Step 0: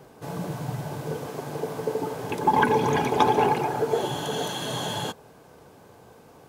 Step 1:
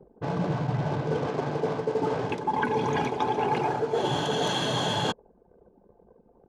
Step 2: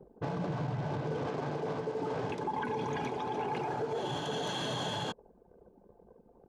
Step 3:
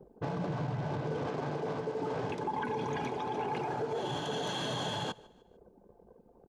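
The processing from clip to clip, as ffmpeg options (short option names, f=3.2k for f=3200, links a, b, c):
-af "lowpass=6.1k,anlmdn=0.251,areverse,acompressor=threshold=-29dB:ratio=16,areverse,volume=6.5dB"
-af "alimiter=level_in=1dB:limit=-24dB:level=0:latency=1:release=90,volume=-1dB,volume=-1.5dB"
-af "aecho=1:1:150|300|450:0.0708|0.029|0.0119"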